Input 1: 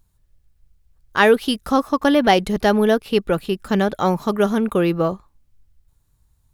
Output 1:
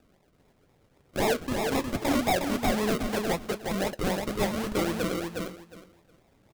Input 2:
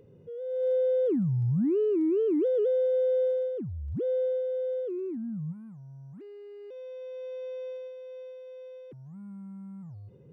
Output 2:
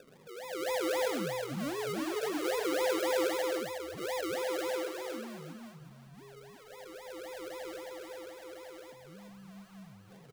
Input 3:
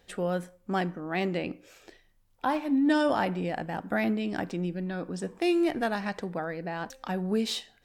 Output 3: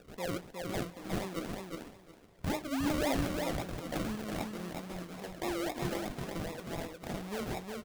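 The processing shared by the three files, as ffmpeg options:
-af "highpass=280,equalizer=f=380:t=o:w=0.62:g=-7,bandreject=f=3.1k:w=8.3,acompressor=mode=upward:threshold=-44dB:ratio=2.5,acrusher=samples=41:mix=1:aa=0.000001:lfo=1:lforange=24.6:lforate=3.8,asoftclip=type=tanh:threshold=-16.5dB,flanger=delay=4.1:depth=9.9:regen=-70:speed=0.29:shape=triangular,aecho=1:1:361|722|1083:0.631|0.12|0.0228"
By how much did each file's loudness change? -10.0, -6.5, -7.5 LU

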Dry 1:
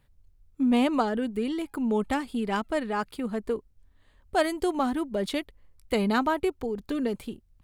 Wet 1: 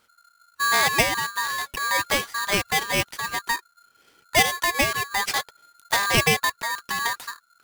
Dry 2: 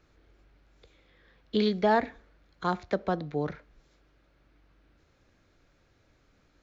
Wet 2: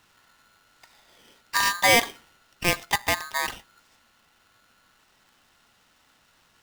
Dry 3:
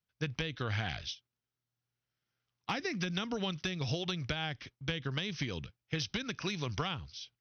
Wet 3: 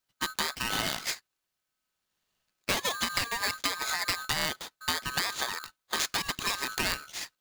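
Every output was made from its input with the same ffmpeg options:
-af "lowshelf=f=440:g=-11,aeval=exprs='val(0)*sgn(sin(2*PI*1400*n/s))':c=same,volume=8.5dB"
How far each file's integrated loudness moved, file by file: +5.5, +6.0, +6.0 LU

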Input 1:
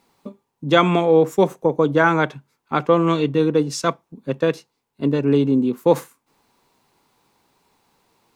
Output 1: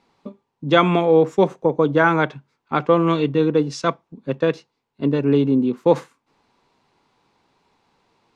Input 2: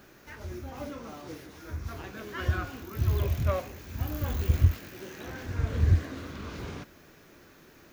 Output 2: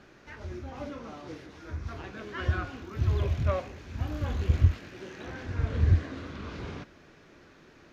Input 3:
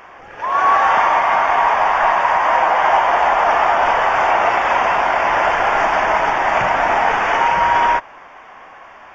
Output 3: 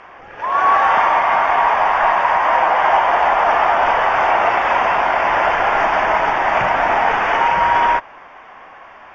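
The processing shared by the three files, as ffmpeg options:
-af "lowpass=4.9k"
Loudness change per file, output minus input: 0.0, 0.0, 0.0 LU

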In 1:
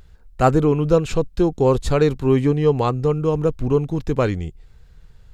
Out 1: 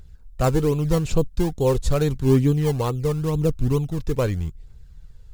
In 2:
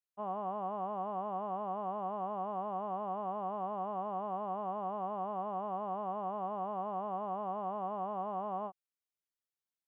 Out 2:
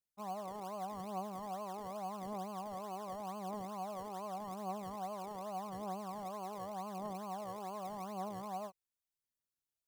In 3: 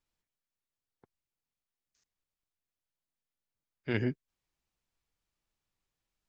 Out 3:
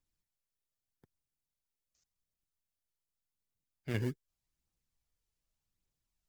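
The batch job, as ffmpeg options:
-filter_complex "[0:a]asplit=2[a][b];[b]acrusher=samples=24:mix=1:aa=0.000001:lfo=1:lforange=24:lforate=2.3,volume=-12dB[c];[a][c]amix=inputs=2:normalize=0,bass=f=250:g=5,treble=f=4k:g=7,aphaser=in_gain=1:out_gain=1:delay=2.4:decay=0.35:speed=0.85:type=triangular,volume=-7.5dB"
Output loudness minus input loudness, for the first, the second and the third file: -3.0, -5.5, -4.0 LU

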